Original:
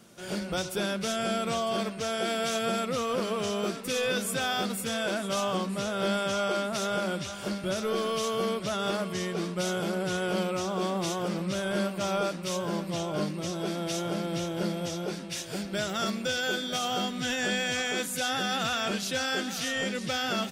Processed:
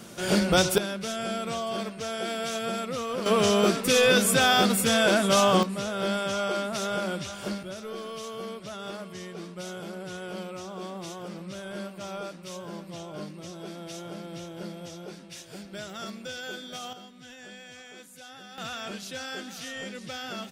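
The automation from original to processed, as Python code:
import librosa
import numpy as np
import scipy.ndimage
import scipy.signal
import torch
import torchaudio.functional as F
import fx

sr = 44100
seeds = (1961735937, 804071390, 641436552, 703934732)

y = fx.gain(x, sr, db=fx.steps((0.0, 10.0), (0.78, -2.0), (3.26, 8.5), (5.63, 0.0), (7.63, -8.0), (16.93, -17.0), (18.58, -7.0)))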